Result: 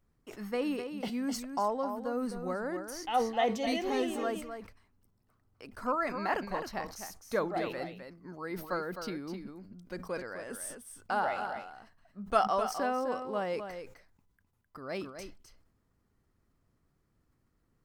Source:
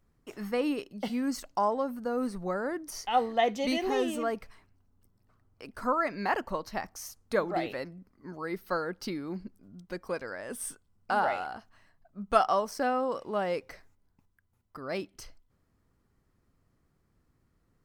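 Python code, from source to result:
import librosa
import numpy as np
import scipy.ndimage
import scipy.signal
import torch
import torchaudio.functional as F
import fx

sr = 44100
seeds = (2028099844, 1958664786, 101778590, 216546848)

p1 = x + fx.echo_single(x, sr, ms=258, db=-8.5, dry=0)
p2 = fx.sustainer(p1, sr, db_per_s=100.0)
y = F.gain(torch.from_numpy(p2), -3.5).numpy()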